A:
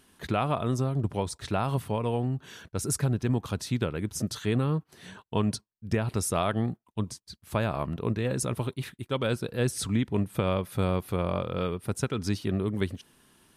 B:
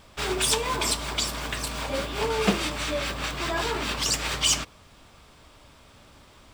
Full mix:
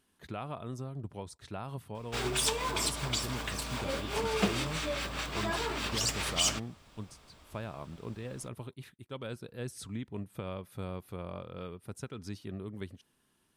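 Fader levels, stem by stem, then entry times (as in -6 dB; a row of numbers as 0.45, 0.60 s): -12.5, -6.0 dB; 0.00, 1.95 s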